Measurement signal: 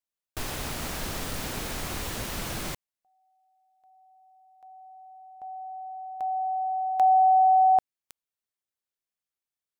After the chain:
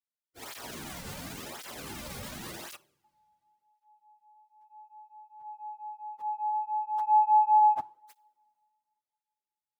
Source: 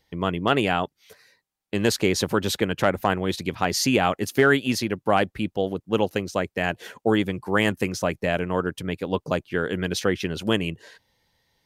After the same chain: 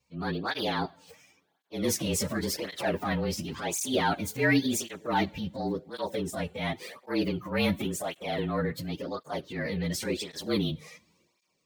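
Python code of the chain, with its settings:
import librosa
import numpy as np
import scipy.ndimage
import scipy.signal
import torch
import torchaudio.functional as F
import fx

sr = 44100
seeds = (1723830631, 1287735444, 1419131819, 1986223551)

y = fx.partial_stretch(x, sr, pct=111)
y = fx.transient(y, sr, attack_db=-7, sustain_db=6)
y = fx.rev_double_slope(y, sr, seeds[0], early_s=0.53, late_s=2.7, knee_db=-21, drr_db=18.5)
y = fx.flanger_cancel(y, sr, hz=0.92, depth_ms=3.2)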